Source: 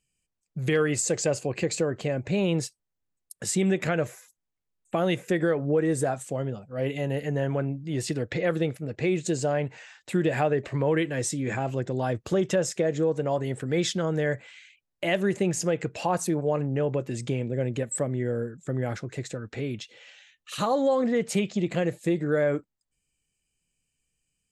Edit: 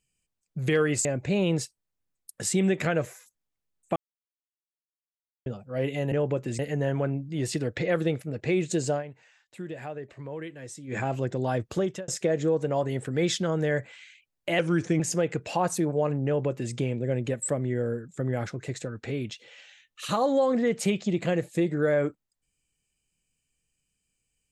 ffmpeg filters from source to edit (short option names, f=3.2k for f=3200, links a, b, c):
-filter_complex "[0:a]asplit=11[a][b][c][d][e][f][g][h][i][j][k];[a]atrim=end=1.052[l];[b]atrim=start=2.068:end=4.98,asetpts=PTS-STARTPTS,afade=t=out:st=2.908:d=0.004:c=hsin[m];[c]atrim=start=4.98:end=6.48,asetpts=PTS-STARTPTS,volume=0[n];[d]atrim=start=6.48:end=7.142,asetpts=PTS-STARTPTS,afade=t=in:d=0.004:c=hsin[o];[e]atrim=start=16.748:end=17.222[p];[f]atrim=start=7.138:end=9.58,asetpts=PTS-STARTPTS,afade=t=out:st=2.302:d=0.14:c=qsin:silence=0.223872[q];[g]atrim=start=9.58:end=11.42,asetpts=PTS-STARTPTS,volume=-13dB[r];[h]atrim=start=11.42:end=12.63,asetpts=PTS-STARTPTS,afade=t=in:d=0.14:c=qsin:silence=0.223872,afade=t=out:st=0.73:d=0.48:c=qsin[s];[i]atrim=start=12.63:end=15.144,asetpts=PTS-STARTPTS,afade=t=in:d=0.004:c=hsin[t];[j]atrim=start=15.14:end=15.49,asetpts=PTS-STARTPTS,asetrate=37926,aresample=44100[u];[k]atrim=start=15.486[v];[m][n][o]concat=n=3:v=0:a=1[w];[l][w]acrossfade=d=0.004:c1=hsin:c2=hsin[x];[x][p]acrossfade=d=0.004:c1=hsin:c2=hsin[y];[q][r][s][t]concat=n=4:v=0:a=1[z];[y][z]acrossfade=d=0.004:c1=hsin:c2=hsin[aa];[aa][u]acrossfade=d=0.004:c1=hsin:c2=hsin[ab];[ab][v]acrossfade=d=0.004:c1=hsin:c2=hsin"